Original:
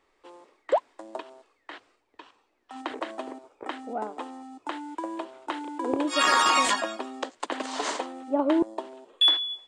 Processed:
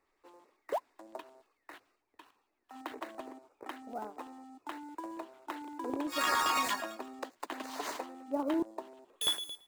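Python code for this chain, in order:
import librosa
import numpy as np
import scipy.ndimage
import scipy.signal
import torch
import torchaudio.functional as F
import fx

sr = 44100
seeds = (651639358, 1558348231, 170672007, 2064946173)

y = fx.dead_time(x, sr, dead_ms=0.053)
y = fx.filter_lfo_notch(y, sr, shape='square', hz=8.9, low_hz=500.0, high_hz=3200.0, q=2.3)
y = y * librosa.db_to_amplitude(-8.0)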